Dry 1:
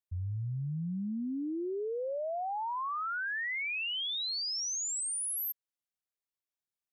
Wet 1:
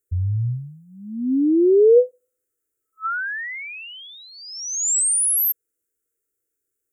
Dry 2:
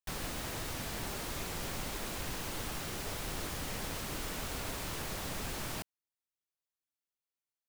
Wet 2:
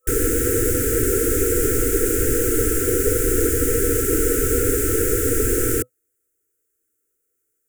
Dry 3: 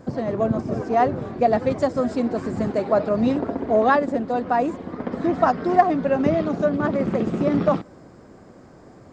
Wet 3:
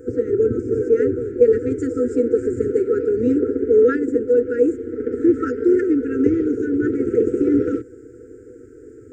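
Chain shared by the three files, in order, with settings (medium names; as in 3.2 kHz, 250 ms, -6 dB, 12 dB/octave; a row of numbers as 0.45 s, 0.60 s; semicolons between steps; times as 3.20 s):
FFT filter 120 Hz 0 dB, 170 Hz -28 dB, 260 Hz +2 dB, 580 Hz +13 dB, 4.2 kHz -23 dB, 7.4 kHz +2 dB; FFT band-reject 500–1300 Hz; normalise loudness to -19 LUFS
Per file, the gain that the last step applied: +13.5 dB, +20.0 dB, +2.0 dB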